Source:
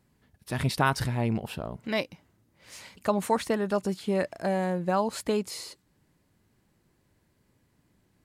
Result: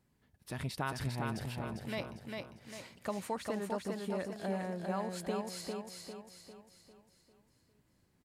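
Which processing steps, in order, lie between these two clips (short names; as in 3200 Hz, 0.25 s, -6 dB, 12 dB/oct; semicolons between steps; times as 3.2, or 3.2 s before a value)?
compressor 1.5:1, threshold -36 dBFS, peak gain reduction 6.5 dB; on a send: feedback echo 0.4 s, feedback 45%, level -3.5 dB; on the sum: gain -6.5 dB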